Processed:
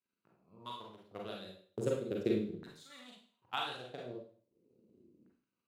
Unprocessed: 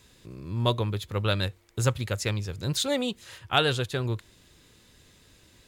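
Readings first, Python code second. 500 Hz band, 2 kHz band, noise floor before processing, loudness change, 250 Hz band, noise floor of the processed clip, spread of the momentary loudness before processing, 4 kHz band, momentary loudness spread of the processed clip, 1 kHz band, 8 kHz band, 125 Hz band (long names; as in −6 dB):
−8.5 dB, −15.5 dB, −59 dBFS, −11.5 dB, −7.5 dB, below −85 dBFS, 11 LU, −16.5 dB, 19 LU, −12.0 dB, −22.5 dB, −20.5 dB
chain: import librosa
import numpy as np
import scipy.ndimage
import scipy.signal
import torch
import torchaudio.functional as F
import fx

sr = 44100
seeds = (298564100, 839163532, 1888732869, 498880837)

y = fx.wiener(x, sr, points=25)
y = fx.curve_eq(y, sr, hz=(220.0, 650.0, 5800.0), db=(0, -27, -19))
y = fx.transient(y, sr, attack_db=11, sustain_db=-10)
y = fx.filter_lfo_highpass(y, sr, shape='saw_down', hz=0.38, low_hz=290.0, high_hz=1600.0, q=3.5)
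y = fx.rev_schroeder(y, sr, rt60_s=0.48, comb_ms=33, drr_db=-2.0)
y = F.gain(torch.from_numpy(y), -2.5).numpy()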